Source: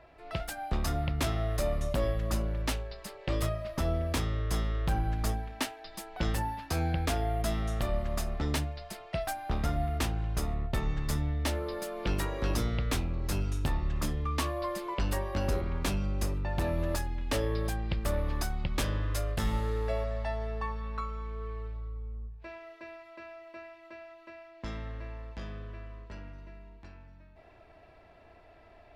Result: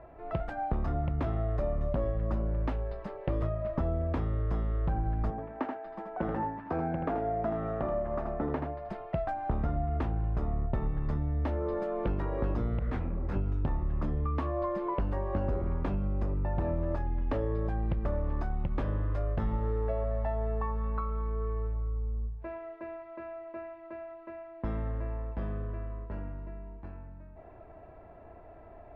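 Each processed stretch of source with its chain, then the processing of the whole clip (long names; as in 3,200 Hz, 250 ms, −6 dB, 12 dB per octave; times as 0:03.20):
0:05.30–0:08.89: three-way crossover with the lows and the highs turned down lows −15 dB, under 180 Hz, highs −12 dB, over 2,300 Hz + single-tap delay 80 ms −6.5 dB
0:12.79–0:13.36: dynamic equaliser 1,800 Hz, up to +7 dB, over −53 dBFS, Q 1.5 + hard clipping −27.5 dBFS + micro pitch shift up and down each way 48 cents
whole clip: downward compressor, threshold −33 dBFS; low-pass filter 1,100 Hz 12 dB per octave; level +6.5 dB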